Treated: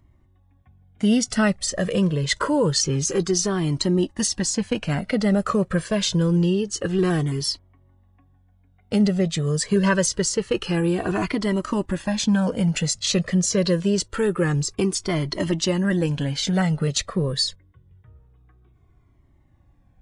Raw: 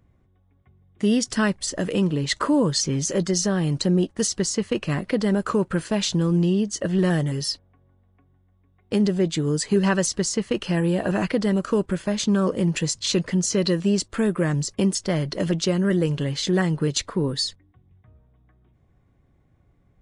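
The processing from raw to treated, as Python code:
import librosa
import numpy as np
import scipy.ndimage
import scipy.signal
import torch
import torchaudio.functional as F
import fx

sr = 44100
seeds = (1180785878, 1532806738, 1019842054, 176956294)

y = fx.comb_cascade(x, sr, direction='falling', hz=0.26)
y = F.gain(torch.from_numpy(y), 6.0).numpy()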